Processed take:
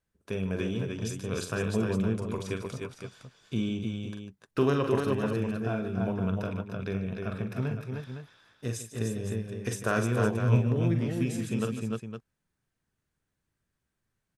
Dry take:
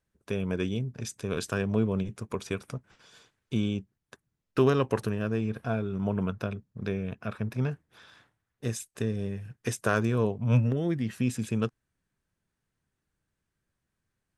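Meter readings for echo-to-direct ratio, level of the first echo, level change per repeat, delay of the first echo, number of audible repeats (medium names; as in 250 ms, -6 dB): -1.0 dB, -8.0 dB, no regular repeats, 42 ms, 4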